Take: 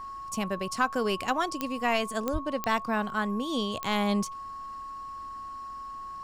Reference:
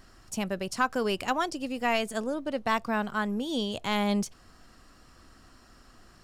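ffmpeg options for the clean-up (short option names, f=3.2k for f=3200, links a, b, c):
-filter_complex "[0:a]adeclick=t=4,bandreject=f=1.1k:w=30,asplit=3[a][b][c];[a]afade=t=out:st=2.32:d=0.02[d];[b]highpass=f=140:w=0.5412,highpass=f=140:w=1.3066,afade=t=in:st=2.32:d=0.02,afade=t=out:st=2.44:d=0.02[e];[c]afade=t=in:st=2.44:d=0.02[f];[d][e][f]amix=inputs=3:normalize=0"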